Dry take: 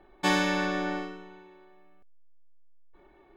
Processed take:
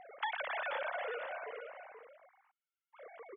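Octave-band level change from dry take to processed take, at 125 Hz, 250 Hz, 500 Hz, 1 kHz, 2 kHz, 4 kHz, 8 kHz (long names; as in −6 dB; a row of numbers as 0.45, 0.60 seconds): can't be measured, below −35 dB, −6.5 dB, −7.0 dB, −7.5 dB, −13.0 dB, below −35 dB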